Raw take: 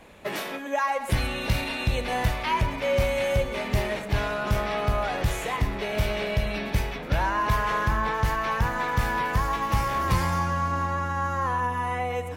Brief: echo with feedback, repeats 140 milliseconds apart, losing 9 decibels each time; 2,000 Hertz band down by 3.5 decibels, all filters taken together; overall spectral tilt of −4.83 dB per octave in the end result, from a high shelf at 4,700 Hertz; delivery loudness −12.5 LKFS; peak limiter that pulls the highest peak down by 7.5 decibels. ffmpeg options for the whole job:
ffmpeg -i in.wav -af "equalizer=frequency=2000:width_type=o:gain=-5.5,highshelf=frequency=4700:gain=5.5,alimiter=limit=-20.5dB:level=0:latency=1,aecho=1:1:140|280|420|560:0.355|0.124|0.0435|0.0152,volume=16.5dB" out.wav

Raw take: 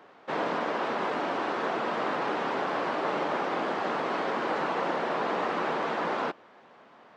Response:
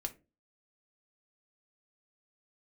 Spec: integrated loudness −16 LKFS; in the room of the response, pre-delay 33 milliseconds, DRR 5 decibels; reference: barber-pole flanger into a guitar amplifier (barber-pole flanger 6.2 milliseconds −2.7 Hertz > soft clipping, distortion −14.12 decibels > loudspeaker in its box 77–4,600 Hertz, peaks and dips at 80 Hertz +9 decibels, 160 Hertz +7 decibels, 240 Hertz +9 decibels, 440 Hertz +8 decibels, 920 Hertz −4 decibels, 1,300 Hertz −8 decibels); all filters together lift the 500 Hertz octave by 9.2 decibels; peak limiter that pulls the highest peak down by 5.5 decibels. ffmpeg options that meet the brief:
-filter_complex "[0:a]equalizer=frequency=500:width_type=o:gain=6,alimiter=limit=-19.5dB:level=0:latency=1,asplit=2[link_01][link_02];[1:a]atrim=start_sample=2205,adelay=33[link_03];[link_02][link_03]afir=irnorm=-1:irlink=0,volume=-4.5dB[link_04];[link_01][link_04]amix=inputs=2:normalize=0,asplit=2[link_05][link_06];[link_06]adelay=6.2,afreqshift=-2.7[link_07];[link_05][link_07]amix=inputs=2:normalize=1,asoftclip=threshold=-27.5dB,highpass=77,equalizer=frequency=80:width_type=q:width=4:gain=9,equalizer=frequency=160:width_type=q:width=4:gain=7,equalizer=frequency=240:width_type=q:width=4:gain=9,equalizer=frequency=440:width_type=q:width=4:gain=8,equalizer=frequency=920:width_type=q:width=4:gain=-4,equalizer=frequency=1300:width_type=q:width=4:gain=-8,lowpass=frequency=4600:width=0.5412,lowpass=frequency=4600:width=1.3066,volume=15dB"

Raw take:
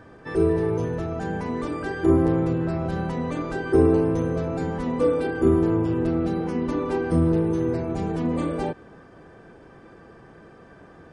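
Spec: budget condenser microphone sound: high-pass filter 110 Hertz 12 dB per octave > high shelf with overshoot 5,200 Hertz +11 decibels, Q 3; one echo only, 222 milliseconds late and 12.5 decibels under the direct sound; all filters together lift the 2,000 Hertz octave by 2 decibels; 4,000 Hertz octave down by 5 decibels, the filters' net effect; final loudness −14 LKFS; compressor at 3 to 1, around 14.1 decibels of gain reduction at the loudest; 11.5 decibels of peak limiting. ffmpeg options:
ffmpeg -i in.wav -af "equalizer=frequency=2000:width_type=o:gain=5.5,equalizer=frequency=4000:width_type=o:gain=-6,acompressor=threshold=-33dB:ratio=3,alimiter=level_in=8dB:limit=-24dB:level=0:latency=1,volume=-8dB,highpass=110,highshelf=frequency=5200:width_type=q:width=3:gain=11,aecho=1:1:222:0.237,volume=27dB" out.wav

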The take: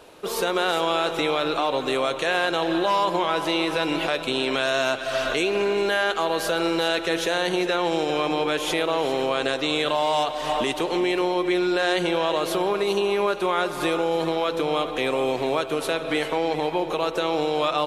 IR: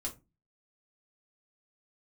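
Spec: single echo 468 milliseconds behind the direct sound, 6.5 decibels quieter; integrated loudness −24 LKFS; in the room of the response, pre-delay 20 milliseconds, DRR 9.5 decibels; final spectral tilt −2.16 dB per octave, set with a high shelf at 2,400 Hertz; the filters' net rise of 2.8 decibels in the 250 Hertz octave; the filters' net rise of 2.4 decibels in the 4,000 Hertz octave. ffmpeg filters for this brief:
-filter_complex "[0:a]equalizer=frequency=250:width_type=o:gain=4.5,highshelf=frequency=2400:gain=-5,equalizer=frequency=4000:width_type=o:gain=7,aecho=1:1:468:0.473,asplit=2[link_01][link_02];[1:a]atrim=start_sample=2205,adelay=20[link_03];[link_02][link_03]afir=irnorm=-1:irlink=0,volume=-9dB[link_04];[link_01][link_04]amix=inputs=2:normalize=0,volume=-3dB"

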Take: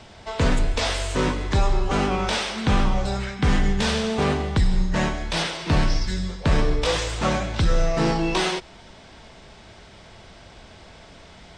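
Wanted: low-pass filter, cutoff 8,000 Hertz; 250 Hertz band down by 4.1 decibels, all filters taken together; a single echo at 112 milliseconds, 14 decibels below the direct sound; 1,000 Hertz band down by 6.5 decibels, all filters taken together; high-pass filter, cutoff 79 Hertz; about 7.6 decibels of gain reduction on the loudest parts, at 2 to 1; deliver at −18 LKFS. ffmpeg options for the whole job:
ffmpeg -i in.wav -af "highpass=79,lowpass=8000,equalizer=frequency=250:width_type=o:gain=-5.5,equalizer=frequency=1000:width_type=o:gain=-8.5,acompressor=threshold=-33dB:ratio=2,aecho=1:1:112:0.2,volume=14.5dB" out.wav

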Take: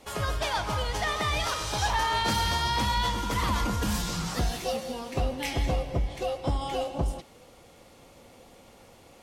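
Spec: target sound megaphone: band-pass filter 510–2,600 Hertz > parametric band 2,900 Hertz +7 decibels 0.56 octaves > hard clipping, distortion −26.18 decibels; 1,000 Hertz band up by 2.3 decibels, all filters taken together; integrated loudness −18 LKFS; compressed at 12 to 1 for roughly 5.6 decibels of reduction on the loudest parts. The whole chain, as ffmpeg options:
ffmpeg -i in.wav -af "equalizer=frequency=1000:width_type=o:gain=3,acompressor=threshold=-27dB:ratio=12,highpass=510,lowpass=2600,equalizer=frequency=2900:width_type=o:width=0.56:gain=7,asoftclip=type=hard:threshold=-25.5dB,volume=16dB" out.wav

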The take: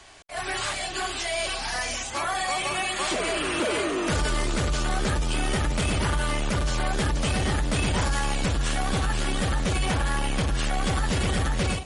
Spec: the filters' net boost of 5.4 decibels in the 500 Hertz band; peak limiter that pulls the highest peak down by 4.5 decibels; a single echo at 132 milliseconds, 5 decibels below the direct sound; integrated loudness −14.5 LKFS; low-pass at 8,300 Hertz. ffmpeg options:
ffmpeg -i in.wav -af "lowpass=8300,equalizer=frequency=500:width_type=o:gain=7,alimiter=limit=-17.5dB:level=0:latency=1,aecho=1:1:132:0.562,volume=10.5dB" out.wav

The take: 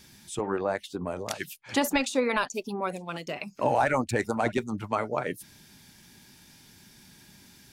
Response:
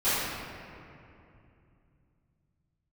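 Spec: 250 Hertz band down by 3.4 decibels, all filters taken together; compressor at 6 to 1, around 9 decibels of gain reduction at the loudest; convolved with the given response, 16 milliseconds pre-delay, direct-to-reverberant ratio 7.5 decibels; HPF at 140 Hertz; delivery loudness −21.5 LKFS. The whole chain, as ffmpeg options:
-filter_complex "[0:a]highpass=140,equalizer=frequency=250:width_type=o:gain=-3.5,acompressor=threshold=-30dB:ratio=6,asplit=2[link_01][link_02];[1:a]atrim=start_sample=2205,adelay=16[link_03];[link_02][link_03]afir=irnorm=-1:irlink=0,volume=-22dB[link_04];[link_01][link_04]amix=inputs=2:normalize=0,volume=14dB"

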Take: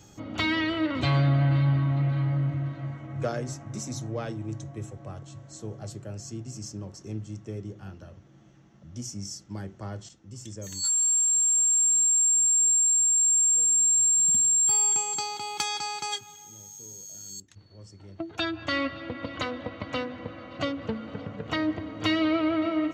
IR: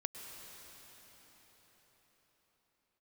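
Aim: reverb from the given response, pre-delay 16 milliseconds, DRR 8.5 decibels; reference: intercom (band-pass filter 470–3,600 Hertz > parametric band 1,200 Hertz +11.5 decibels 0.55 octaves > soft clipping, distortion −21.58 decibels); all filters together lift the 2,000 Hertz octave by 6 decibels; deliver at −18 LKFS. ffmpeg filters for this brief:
-filter_complex "[0:a]equalizer=frequency=2000:width_type=o:gain=5,asplit=2[link_01][link_02];[1:a]atrim=start_sample=2205,adelay=16[link_03];[link_02][link_03]afir=irnorm=-1:irlink=0,volume=-8dB[link_04];[link_01][link_04]amix=inputs=2:normalize=0,highpass=470,lowpass=3600,equalizer=frequency=1200:width_type=o:width=0.55:gain=11.5,asoftclip=threshold=-14dB,volume=11dB"

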